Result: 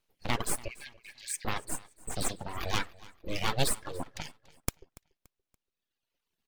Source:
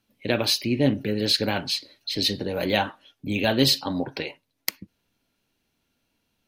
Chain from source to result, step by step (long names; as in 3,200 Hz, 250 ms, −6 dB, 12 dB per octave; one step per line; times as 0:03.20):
full-wave rectification
0:00.68–0:01.45: Chebyshev high-pass with heavy ripple 1,600 Hz, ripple 6 dB
reverb reduction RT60 1.8 s
repeating echo 286 ms, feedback 37%, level −21.5 dB
level −4.5 dB